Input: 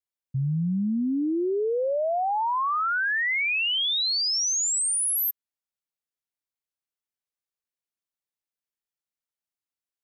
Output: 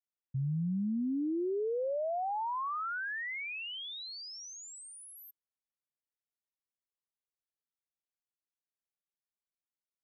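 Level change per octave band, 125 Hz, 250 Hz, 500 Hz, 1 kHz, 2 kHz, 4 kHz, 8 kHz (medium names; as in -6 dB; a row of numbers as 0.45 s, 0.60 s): no reading, -7.0 dB, -8.0 dB, -9.5 dB, -13.0 dB, -18.0 dB, -23.5 dB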